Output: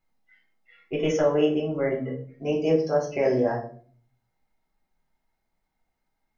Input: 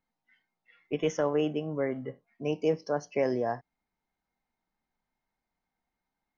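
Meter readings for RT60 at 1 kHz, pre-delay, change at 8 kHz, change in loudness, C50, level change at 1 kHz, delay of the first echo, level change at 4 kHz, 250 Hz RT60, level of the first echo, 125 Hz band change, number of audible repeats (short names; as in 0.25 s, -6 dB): 0.40 s, 6 ms, n/a, +6.0 dB, 9.0 dB, +3.5 dB, none, +5.0 dB, 0.75 s, none, +6.0 dB, none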